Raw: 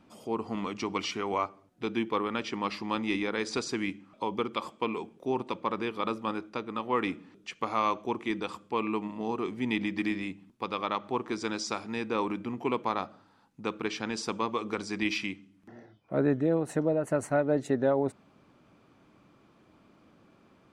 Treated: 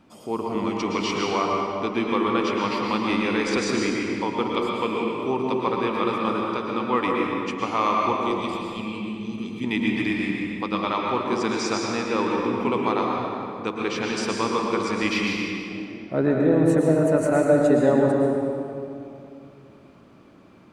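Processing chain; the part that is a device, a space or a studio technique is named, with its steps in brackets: 8.17–9.64 EQ curve 190 Hz 0 dB, 800 Hz -29 dB, 3000 Hz 0 dB; stairwell (reverb RT60 2.6 s, pre-delay 0.104 s, DRR -1.5 dB); gain +4 dB

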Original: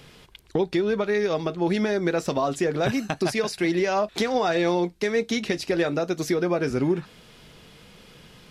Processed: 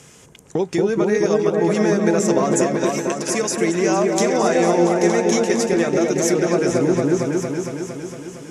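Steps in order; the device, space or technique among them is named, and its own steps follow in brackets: LPF 9700 Hz 12 dB/oct; 2.66–3.31 Chebyshev high-pass 2200 Hz, order 2; budget condenser microphone (HPF 81 Hz; resonant high shelf 5300 Hz +8.5 dB, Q 3); repeats that get brighter 0.229 s, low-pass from 750 Hz, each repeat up 1 oct, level 0 dB; gain +2.5 dB

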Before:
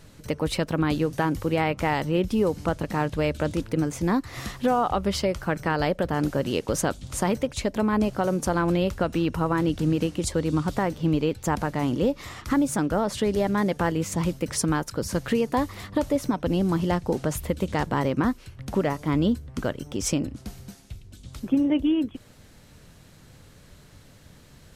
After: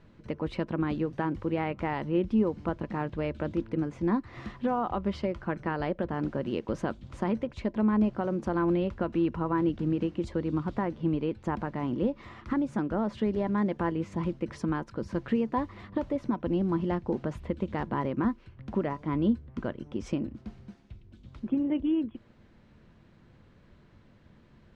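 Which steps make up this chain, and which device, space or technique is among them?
inside a cardboard box (LPF 2600 Hz 12 dB/oct; small resonant body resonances 220/340/1000 Hz, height 8 dB, ringing for 85 ms); gain -7.5 dB

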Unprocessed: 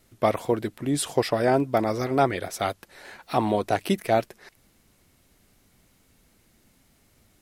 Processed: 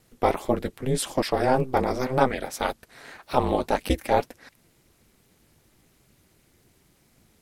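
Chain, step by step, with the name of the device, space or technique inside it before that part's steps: alien voice (ring modulator 130 Hz; flange 1.8 Hz, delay 0.1 ms, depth 7.8 ms, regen -60%); gain +7 dB

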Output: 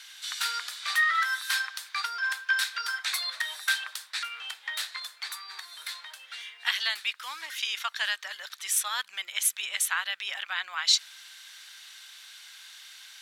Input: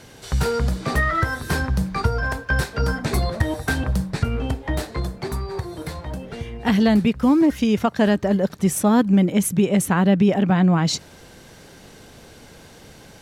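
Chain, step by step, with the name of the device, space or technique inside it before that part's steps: headphones lying on a table (HPF 1400 Hz 24 dB/oct; bell 3600 Hz +7.5 dB 0.55 oct)

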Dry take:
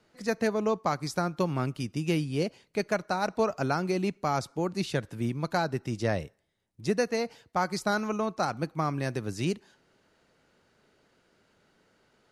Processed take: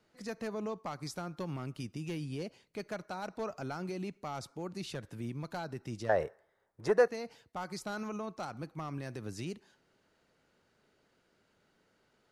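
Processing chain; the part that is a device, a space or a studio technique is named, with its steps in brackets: clipper into limiter (hard clip -19.5 dBFS, distortion -19 dB; limiter -25.5 dBFS, peak gain reduction 6 dB); 6.09–7.08 band shelf 850 Hz +15.5 dB 2.6 oct; gain -5.5 dB

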